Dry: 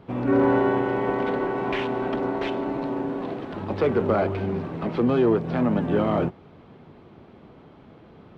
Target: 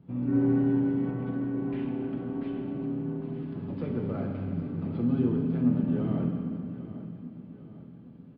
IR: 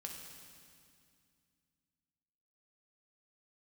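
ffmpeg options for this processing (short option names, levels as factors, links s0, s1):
-filter_complex "[0:a]equalizer=f=125:t=o:w=1:g=10,equalizer=f=250:t=o:w=1:g=7,equalizer=f=500:t=o:w=1:g=-5,equalizer=f=1000:t=o:w=1:g=-6,equalizer=f=2000:t=o:w=1:g=-4,equalizer=f=4000:t=o:w=1:g=-5,aecho=1:1:801|1602|2403|3204:0.2|0.0878|0.0386|0.017[s0];[1:a]atrim=start_sample=2205[s1];[s0][s1]afir=irnorm=-1:irlink=0,aresample=11025,aresample=44100,asettb=1/sr,asplit=3[s2][s3][s4];[s2]atrim=end=1.114[s5];[s3]atrim=start=1.11:end=3.34,asetpts=PTS-STARTPTS,afade=t=in:d=0.004:c=qsin,afade=t=out:st=2.226:d=0.004:c=qsin,highshelf=f=3600:g=-9.5[s6];[s4]atrim=start=3.336[s7];[s5][s6]acrossfade=d=0.004:c1=hsin:c2=qsin[s8];[s8][s7]acrossfade=d=0.004:c1=qsin:c2=hsin,volume=0.398"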